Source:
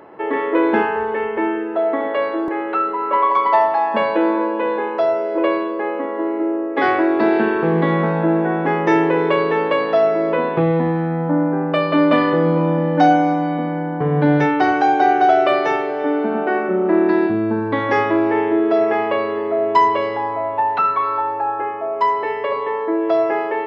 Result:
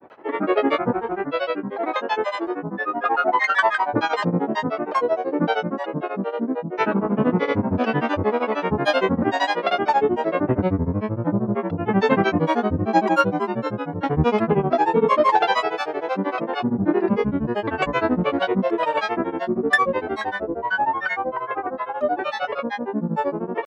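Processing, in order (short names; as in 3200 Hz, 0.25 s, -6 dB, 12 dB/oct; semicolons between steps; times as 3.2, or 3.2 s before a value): grains, grains 13/s, pitch spread up and down by 12 st; gain -1.5 dB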